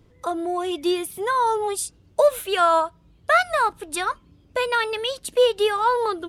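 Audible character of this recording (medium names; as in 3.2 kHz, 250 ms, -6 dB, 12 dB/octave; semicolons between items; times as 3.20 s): noise floor -57 dBFS; spectral tilt -1.5 dB/octave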